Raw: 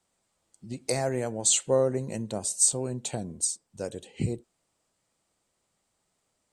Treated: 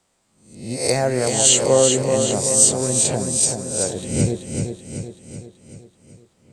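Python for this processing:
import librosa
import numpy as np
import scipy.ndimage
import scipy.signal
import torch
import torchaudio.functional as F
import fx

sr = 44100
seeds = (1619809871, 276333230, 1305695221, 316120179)

p1 = fx.spec_swells(x, sr, rise_s=0.56)
p2 = fx.high_shelf(p1, sr, hz=11000.0, db=-5.5)
p3 = p2 + fx.echo_feedback(p2, sr, ms=381, feedback_pct=53, wet_db=-5.5, dry=0)
y = p3 * 10.0 ** (7.5 / 20.0)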